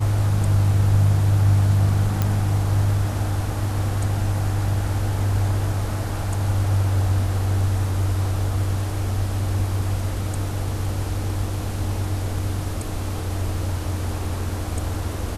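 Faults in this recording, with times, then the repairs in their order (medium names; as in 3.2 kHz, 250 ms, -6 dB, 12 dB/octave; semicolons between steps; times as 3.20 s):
2.22 s: pop -8 dBFS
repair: de-click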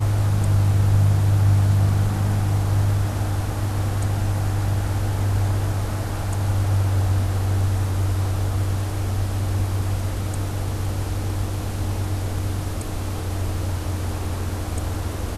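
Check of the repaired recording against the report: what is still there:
nothing left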